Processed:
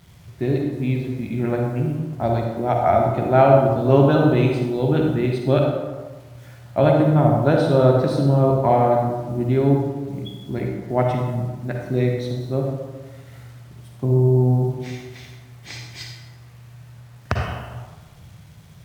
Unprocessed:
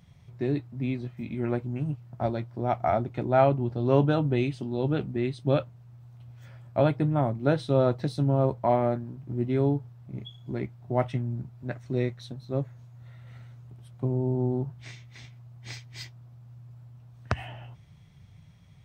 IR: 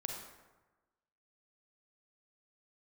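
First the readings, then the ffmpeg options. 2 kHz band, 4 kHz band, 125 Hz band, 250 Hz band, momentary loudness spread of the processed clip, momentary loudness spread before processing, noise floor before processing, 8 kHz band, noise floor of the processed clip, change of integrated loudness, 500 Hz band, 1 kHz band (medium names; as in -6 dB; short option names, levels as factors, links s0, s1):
+8.0 dB, +7.0 dB, +8.5 dB, +8.0 dB, 17 LU, 19 LU, -53 dBFS, no reading, -45 dBFS, +8.0 dB, +9.0 dB, +9.0 dB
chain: -filter_complex "[0:a]acrusher=bits=9:mix=0:aa=0.000001[s0];[1:a]atrim=start_sample=2205,asetrate=37926,aresample=44100[s1];[s0][s1]afir=irnorm=-1:irlink=0,volume=2.24"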